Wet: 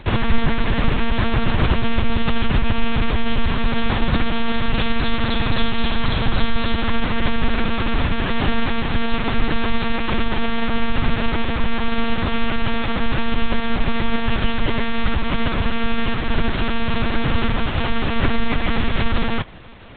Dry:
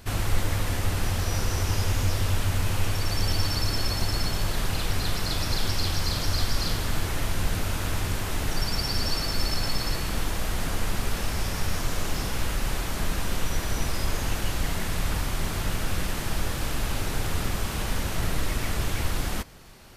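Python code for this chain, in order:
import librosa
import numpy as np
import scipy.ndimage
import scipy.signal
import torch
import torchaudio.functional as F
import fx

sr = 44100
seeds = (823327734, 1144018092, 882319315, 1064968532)

y = fx.lpc_monotone(x, sr, seeds[0], pitch_hz=230.0, order=10)
y = F.gain(torch.from_numpy(y), 9.0).numpy()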